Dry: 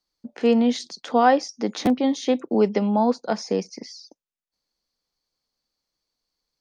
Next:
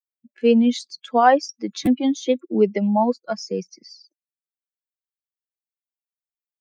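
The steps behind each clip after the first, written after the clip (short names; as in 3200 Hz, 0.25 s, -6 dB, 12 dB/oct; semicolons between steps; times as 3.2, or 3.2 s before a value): per-bin expansion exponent 2; gain +4.5 dB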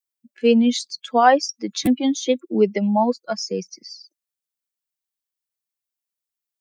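high shelf 3200 Hz +8 dB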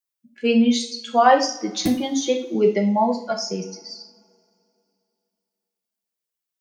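two-slope reverb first 0.43 s, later 2.7 s, from -26 dB, DRR 1.5 dB; gain -1.5 dB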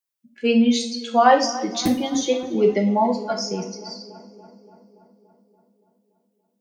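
darkening echo 0.286 s, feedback 67%, low-pass 2700 Hz, level -16 dB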